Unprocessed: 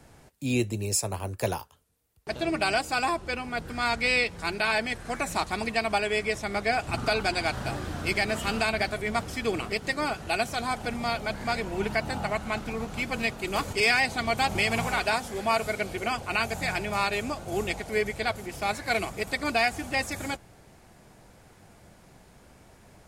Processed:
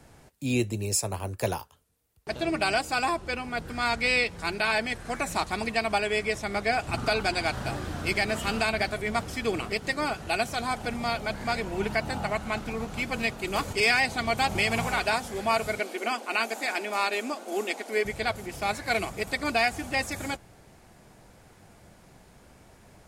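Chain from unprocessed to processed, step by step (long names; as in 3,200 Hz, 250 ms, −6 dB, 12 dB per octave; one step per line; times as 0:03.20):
0:15.80–0:18.05: linear-phase brick-wall high-pass 210 Hz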